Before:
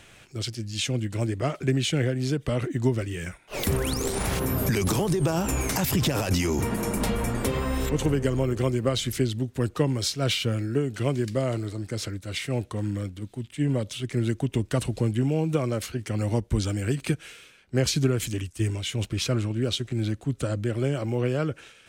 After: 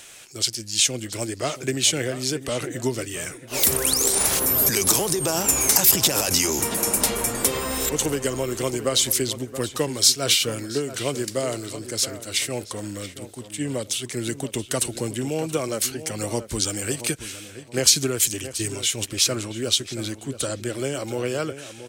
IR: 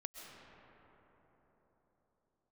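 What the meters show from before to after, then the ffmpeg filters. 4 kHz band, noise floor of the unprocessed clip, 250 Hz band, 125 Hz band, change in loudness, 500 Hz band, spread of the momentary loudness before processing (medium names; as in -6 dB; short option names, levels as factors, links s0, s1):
+9.0 dB, -54 dBFS, -2.5 dB, -7.5 dB, +5.0 dB, +1.5 dB, 7 LU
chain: -filter_complex "[0:a]bass=f=250:g=-11,treble=f=4000:g=13,asplit=2[s0][s1];[s1]adelay=676,lowpass=f=2600:p=1,volume=0.251,asplit=2[s2][s3];[s3]adelay=676,lowpass=f=2600:p=1,volume=0.3,asplit=2[s4][s5];[s5]adelay=676,lowpass=f=2600:p=1,volume=0.3[s6];[s0][s2][s4][s6]amix=inputs=4:normalize=0,volume=1.33"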